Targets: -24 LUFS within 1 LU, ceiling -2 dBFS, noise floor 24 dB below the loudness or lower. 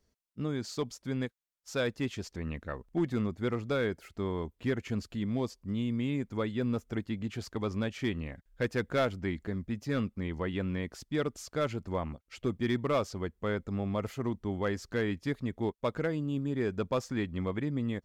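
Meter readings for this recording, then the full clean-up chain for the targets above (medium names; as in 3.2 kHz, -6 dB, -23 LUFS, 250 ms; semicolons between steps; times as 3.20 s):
clipped samples 0.4%; clipping level -21.5 dBFS; loudness -34.0 LUFS; peak level -21.5 dBFS; loudness target -24.0 LUFS
-> clip repair -21.5 dBFS; trim +10 dB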